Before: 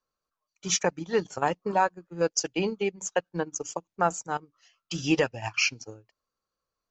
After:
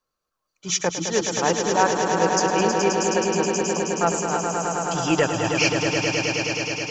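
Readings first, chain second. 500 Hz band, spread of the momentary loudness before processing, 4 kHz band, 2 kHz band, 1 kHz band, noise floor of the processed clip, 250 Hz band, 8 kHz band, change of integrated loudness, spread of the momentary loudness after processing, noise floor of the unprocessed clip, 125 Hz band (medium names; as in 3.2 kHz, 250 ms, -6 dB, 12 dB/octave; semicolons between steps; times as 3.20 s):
+7.5 dB, 9 LU, +7.5 dB, +7.5 dB, +7.5 dB, -81 dBFS, +8.0 dB, +7.5 dB, +6.5 dB, 5 LU, under -85 dBFS, +8.5 dB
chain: transient shaper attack -5 dB, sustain +1 dB; echo with a slow build-up 106 ms, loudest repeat 5, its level -6.5 dB; trim +5 dB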